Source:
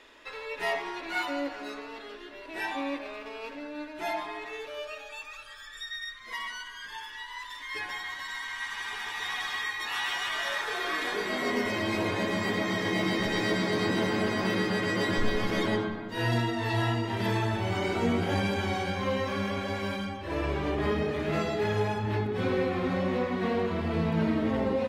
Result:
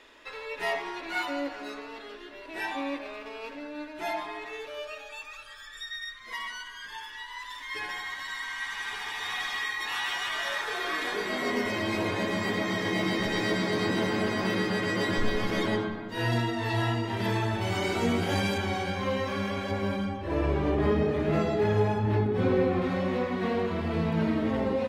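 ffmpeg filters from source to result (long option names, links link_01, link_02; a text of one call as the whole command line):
ffmpeg -i in.wav -filter_complex "[0:a]asettb=1/sr,asplit=3[link_01][link_02][link_03];[link_01]atrim=end=7.384[link_04];[link_02]atrim=start=7.38:end=9.95,asetpts=PTS-STARTPTS,afade=type=in:duration=0.004:curve=qsin,afade=type=out:start_time=2.566:duration=0.004:curve=qsin,aecho=1:1:78:0.422,atrim=end_sample=113337[link_05];[link_03]atrim=start=9.946[link_06];[link_04][link_05]acrossfade=duration=0.004:curve1=hsin:curve2=qsin[link_07];[link_07][link_06]acrossfade=duration=0.004:curve1=qsin:curve2=hsin,asettb=1/sr,asplit=3[link_08][link_09][link_10];[link_08]atrim=end=17.614[link_11];[link_09]atrim=start=17.61:end=18.58,asetpts=PTS-STARTPTS,afade=type=in:duration=0.004:curve=qsin,afade=type=out:start_time=0.966:duration=0.004:curve=qsin,highshelf=frequency=3700:gain=7.5[link_12];[link_10]atrim=start=18.576[link_13];[link_11][link_12]acrossfade=duration=0.004:curve1=hsin:curve2=qsin[link_14];[link_14][link_13]acrossfade=duration=0.004:curve1=qsin:curve2=hsin,asettb=1/sr,asplit=3[link_15][link_16][link_17];[link_15]atrim=end=19.714[link_18];[link_16]atrim=start=19.71:end=22.82,asetpts=PTS-STARTPTS,afade=type=in:duration=0.004:curve=qsin,afade=type=out:start_time=3.106:duration=0.004:curve=qsin,tiltshelf=frequency=1200:gain=4.5[link_19];[link_17]atrim=start=22.816[link_20];[link_18][link_19]acrossfade=duration=0.004:curve1=hsin:curve2=qsin[link_21];[link_21][link_20]acrossfade=duration=0.004:curve1=qsin:curve2=hsin" out.wav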